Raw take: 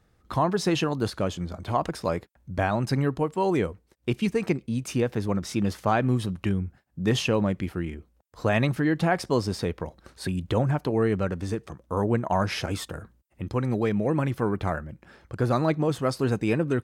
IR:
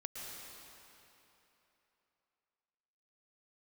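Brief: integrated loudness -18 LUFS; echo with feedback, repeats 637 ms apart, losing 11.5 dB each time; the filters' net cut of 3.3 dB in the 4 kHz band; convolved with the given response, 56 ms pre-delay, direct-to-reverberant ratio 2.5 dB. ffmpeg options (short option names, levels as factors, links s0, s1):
-filter_complex "[0:a]equalizer=f=4000:t=o:g=-4.5,aecho=1:1:637|1274|1911:0.266|0.0718|0.0194,asplit=2[s0][s1];[1:a]atrim=start_sample=2205,adelay=56[s2];[s1][s2]afir=irnorm=-1:irlink=0,volume=0.841[s3];[s0][s3]amix=inputs=2:normalize=0,volume=2.24"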